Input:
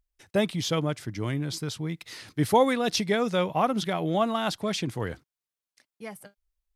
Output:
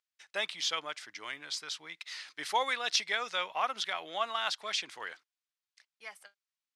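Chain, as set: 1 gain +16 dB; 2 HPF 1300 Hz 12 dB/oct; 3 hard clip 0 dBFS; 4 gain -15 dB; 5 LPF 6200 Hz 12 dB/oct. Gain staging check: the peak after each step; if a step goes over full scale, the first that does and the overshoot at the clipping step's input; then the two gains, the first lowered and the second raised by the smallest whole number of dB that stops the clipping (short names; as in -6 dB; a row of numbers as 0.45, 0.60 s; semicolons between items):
+7.0, +4.5, 0.0, -15.0, -14.5 dBFS; step 1, 4.5 dB; step 1 +11 dB, step 4 -10 dB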